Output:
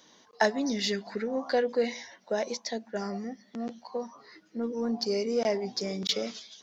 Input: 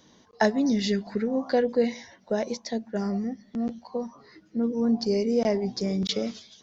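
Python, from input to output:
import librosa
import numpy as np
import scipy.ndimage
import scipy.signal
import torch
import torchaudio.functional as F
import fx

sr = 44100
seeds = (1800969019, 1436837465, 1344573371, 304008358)

p1 = fx.highpass(x, sr, hz=640.0, slope=6)
p2 = 10.0 ** (-28.0 / 20.0) * np.tanh(p1 / 10.0 ** (-28.0 / 20.0))
y = p1 + (p2 * 10.0 ** (-10.5 / 20.0))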